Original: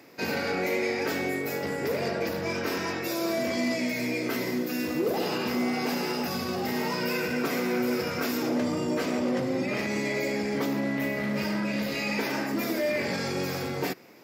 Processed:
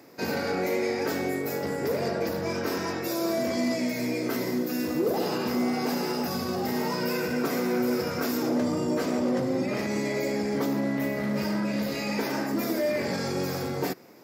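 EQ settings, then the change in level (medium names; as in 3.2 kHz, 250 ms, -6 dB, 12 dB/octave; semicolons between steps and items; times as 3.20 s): peaking EQ 2.6 kHz -7 dB 1.2 oct; +1.5 dB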